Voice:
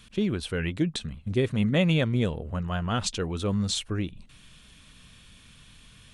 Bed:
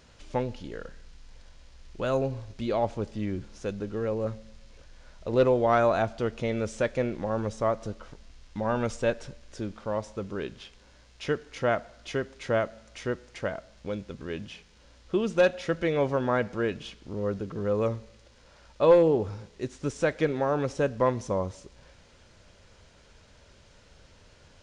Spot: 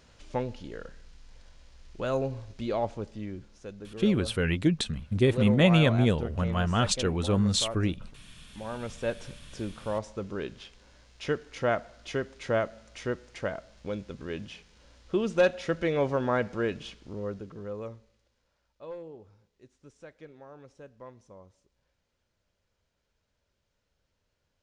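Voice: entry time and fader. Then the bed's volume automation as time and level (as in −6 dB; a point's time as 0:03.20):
3.85 s, +2.0 dB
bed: 0:02.74 −2 dB
0:03.65 −9.5 dB
0:08.74 −9.5 dB
0:09.31 −1 dB
0:16.92 −1 dB
0:18.73 −22.5 dB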